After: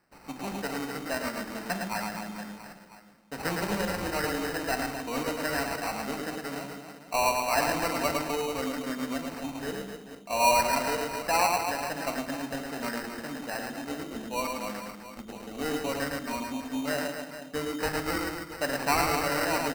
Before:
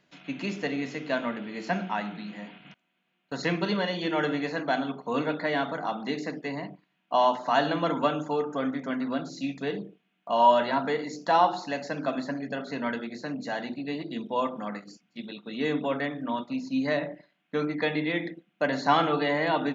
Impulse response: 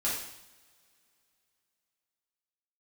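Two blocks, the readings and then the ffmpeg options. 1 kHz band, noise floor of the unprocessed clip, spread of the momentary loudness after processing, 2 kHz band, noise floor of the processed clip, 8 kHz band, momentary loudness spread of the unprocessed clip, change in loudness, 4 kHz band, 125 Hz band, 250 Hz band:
−2.5 dB, −75 dBFS, 13 LU, +0.5 dB, −49 dBFS, can't be measured, 14 LU, −1.5 dB, +1.0 dB, −3.0 dB, −3.5 dB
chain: -af "tiltshelf=frequency=1400:gain=-3.5,aecho=1:1:110|253|438.9|680.6|994.7:0.631|0.398|0.251|0.158|0.1,acrusher=samples=13:mix=1:aa=0.000001,volume=-2.5dB"

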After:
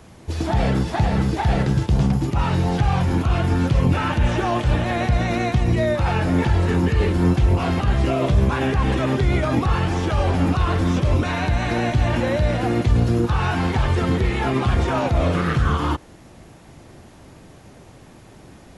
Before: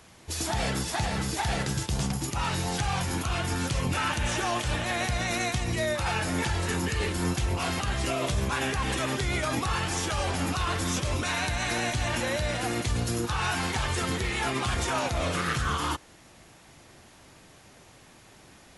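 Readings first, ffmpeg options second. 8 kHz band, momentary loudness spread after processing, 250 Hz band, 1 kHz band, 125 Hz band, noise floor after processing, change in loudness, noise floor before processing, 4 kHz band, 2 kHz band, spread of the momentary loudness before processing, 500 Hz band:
−8.0 dB, 2 LU, +11.0 dB, +5.5 dB, +12.0 dB, −46 dBFS, +8.0 dB, −54 dBFS, −1.0 dB, +2.0 dB, 2 LU, +9.0 dB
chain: -filter_complex "[0:a]acrossover=split=4600[link_01][link_02];[link_02]acompressor=threshold=-49dB:ratio=4:attack=1:release=60[link_03];[link_01][link_03]amix=inputs=2:normalize=0,tiltshelf=frequency=880:gain=6,volume=6dB"

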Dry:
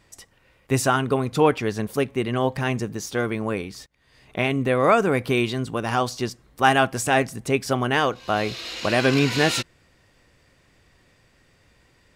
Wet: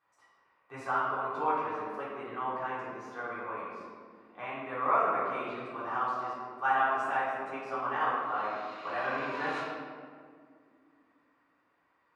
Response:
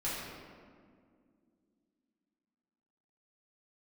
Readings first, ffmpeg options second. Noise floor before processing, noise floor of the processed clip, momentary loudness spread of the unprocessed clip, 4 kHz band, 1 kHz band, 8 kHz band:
−60 dBFS, −72 dBFS, 9 LU, −21.5 dB, −5.0 dB, below −30 dB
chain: -filter_complex "[0:a]bandpass=frequency=1100:width_type=q:width=2.8:csg=0[link_01];[1:a]atrim=start_sample=2205[link_02];[link_01][link_02]afir=irnorm=-1:irlink=0,volume=-6.5dB"

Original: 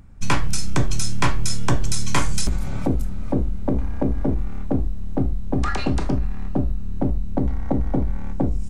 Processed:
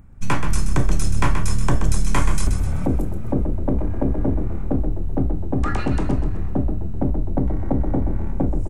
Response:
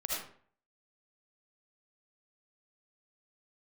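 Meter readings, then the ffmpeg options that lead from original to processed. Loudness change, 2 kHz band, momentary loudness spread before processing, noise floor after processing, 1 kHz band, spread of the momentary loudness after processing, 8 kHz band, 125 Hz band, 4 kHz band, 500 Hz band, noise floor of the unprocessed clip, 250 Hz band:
+1.5 dB, −1.0 dB, 3 LU, −23 dBFS, 0.0 dB, 3 LU, −3.5 dB, +2.0 dB, −6.5 dB, +1.0 dB, −23 dBFS, +1.0 dB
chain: -filter_complex "[0:a]equalizer=frequency=4600:width=0.93:gain=-8.5,asplit=6[link_01][link_02][link_03][link_04][link_05][link_06];[link_02]adelay=128,afreqshift=36,volume=-8dB[link_07];[link_03]adelay=256,afreqshift=72,volume=-15.3dB[link_08];[link_04]adelay=384,afreqshift=108,volume=-22.7dB[link_09];[link_05]adelay=512,afreqshift=144,volume=-30dB[link_10];[link_06]adelay=640,afreqshift=180,volume=-37.3dB[link_11];[link_01][link_07][link_08][link_09][link_10][link_11]amix=inputs=6:normalize=0"

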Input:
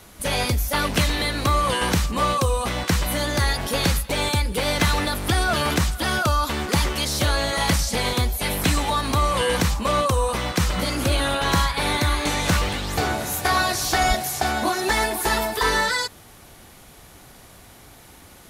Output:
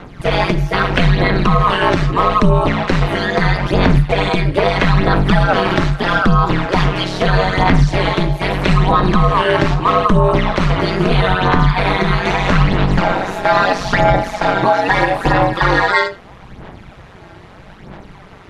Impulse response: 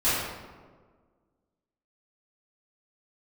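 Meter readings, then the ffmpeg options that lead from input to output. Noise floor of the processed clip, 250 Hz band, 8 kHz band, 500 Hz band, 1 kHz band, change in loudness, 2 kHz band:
−39 dBFS, +10.0 dB, −11.5 dB, +9.5 dB, +8.5 dB, +7.5 dB, +7.0 dB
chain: -filter_complex "[0:a]aphaser=in_gain=1:out_gain=1:delay=4.1:decay=0.61:speed=0.78:type=sinusoidal,asplit=2[link_01][link_02];[link_02]highpass=63[link_03];[1:a]atrim=start_sample=2205,afade=type=out:start_time=0.15:duration=0.01,atrim=end_sample=7056[link_04];[link_03][link_04]afir=irnorm=-1:irlink=0,volume=-22.5dB[link_05];[link_01][link_05]amix=inputs=2:normalize=0,aeval=exprs='val(0)*sin(2*PI*93*n/s)':channel_layout=same,lowpass=2500,alimiter=level_in=10.5dB:limit=-1dB:release=50:level=0:latency=1,volume=-1dB"

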